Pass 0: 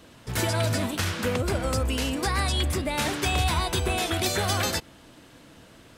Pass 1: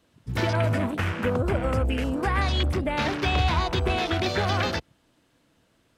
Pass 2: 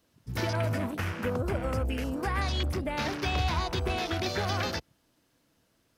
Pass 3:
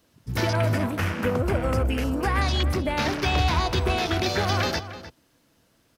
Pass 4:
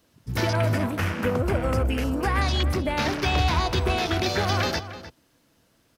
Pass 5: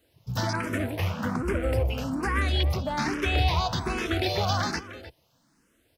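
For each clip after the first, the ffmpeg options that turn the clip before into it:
-filter_complex "[0:a]afwtdn=0.0224,acrossover=split=3700[a][b];[b]acompressor=threshold=-40dB:ratio=4:attack=1:release=60[c];[a][c]amix=inputs=2:normalize=0,volume=2dB"
-af "aexciter=amount=1.9:drive=4.6:freq=4.7k,volume=-5.5dB"
-filter_complex "[0:a]asplit=2[a][b];[b]adelay=303.2,volume=-13dB,highshelf=f=4k:g=-6.82[c];[a][c]amix=inputs=2:normalize=0,volume=6dB"
-af anull
-filter_complex "[0:a]asplit=2[a][b];[b]afreqshift=1.2[c];[a][c]amix=inputs=2:normalize=1"

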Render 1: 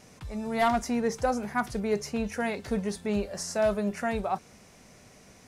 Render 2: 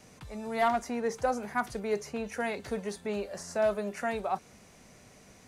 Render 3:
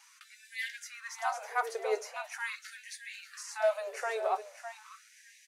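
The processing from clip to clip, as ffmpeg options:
-filter_complex "[0:a]bandreject=f=5.3k:w=22,acrossover=split=270|690|2300[a][b][c][d];[a]acompressor=threshold=-43dB:ratio=6[e];[d]alimiter=level_in=8.5dB:limit=-24dB:level=0:latency=1:release=410,volume=-8.5dB[f];[e][b][c][f]amix=inputs=4:normalize=0,volume=-1.5dB"
-af "aecho=1:1:604|1208|1812|2416:0.282|0.101|0.0365|0.0131,flanger=delay=6:depth=4:regen=-44:speed=0.55:shape=sinusoidal,afftfilt=real='re*gte(b*sr/1024,350*pow(1600/350,0.5+0.5*sin(2*PI*0.42*pts/sr)))':imag='im*gte(b*sr/1024,350*pow(1600/350,0.5+0.5*sin(2*PI*0.42*pts/sr)))':win_size=1024:overlap=0.75,volume=4dB"

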